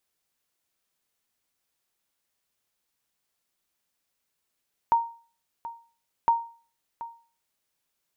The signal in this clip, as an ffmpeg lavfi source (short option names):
-f lavfi -i "aevalsrc='0.211*(sin(2*PI*928*mod(t,1.36))*exp(-6.91*mod(t,1.36)/0.4)+0.158*sin(2*PI*928*max(mod(t,1.36)-0.73,0))*exp(-6.91*max(mod(t,1.36)-0.73,0)/0.4))':d=2.72:s=44100"